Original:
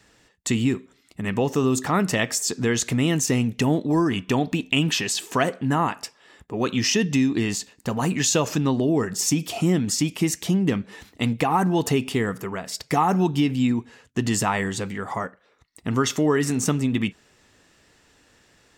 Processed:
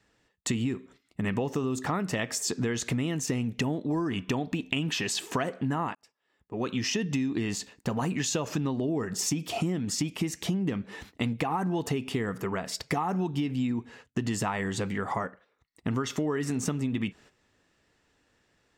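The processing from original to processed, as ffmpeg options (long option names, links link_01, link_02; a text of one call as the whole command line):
ffmpeg -i in.wav -filter_complex "[0:a]asplit=2[link_01][link_02];[link_01]atrim=end=5.95,asetpts=PTS-STARTPTS,afade=type=out:start_time=5.946:duration=0.004:curve=hsin[link_03];[link_02]atrim=start=5.95,asetpts=PTS-STARTPTS,afade=type=in:duration=1.35[link_04];[link_03][link_04]concat=n=2:v=0:a=1,agate=range=-11dB:threshold=-49dB:ratio=16:detection=peak,highshelf=frequency=4800:gain=-7,acompressor=threshold=-27dB:ratio=6,volume=1dB" out.wav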